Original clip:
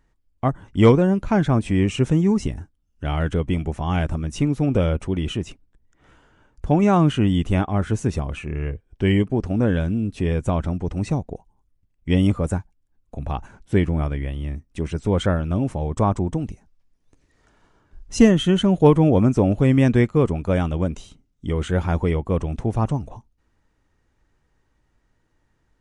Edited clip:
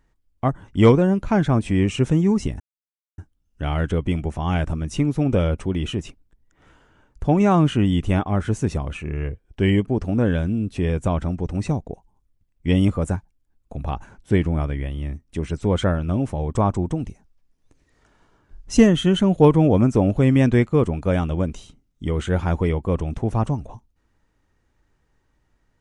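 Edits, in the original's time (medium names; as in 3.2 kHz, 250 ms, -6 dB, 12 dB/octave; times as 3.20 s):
2.60 s: insert silence 0.58 s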